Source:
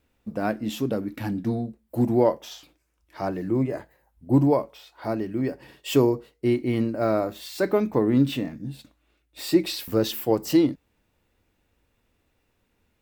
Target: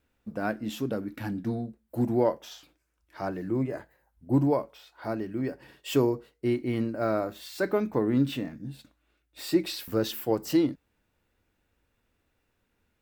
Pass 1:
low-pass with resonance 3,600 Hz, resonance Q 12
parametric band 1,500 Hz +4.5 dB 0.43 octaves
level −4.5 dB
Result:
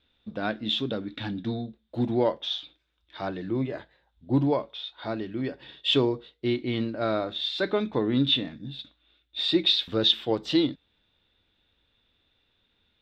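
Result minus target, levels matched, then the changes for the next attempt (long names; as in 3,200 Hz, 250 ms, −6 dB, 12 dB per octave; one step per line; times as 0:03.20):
4,000 Hz band +13.5 dB
remove: low-pass with resonance 3,600 Hz, resonance Q 12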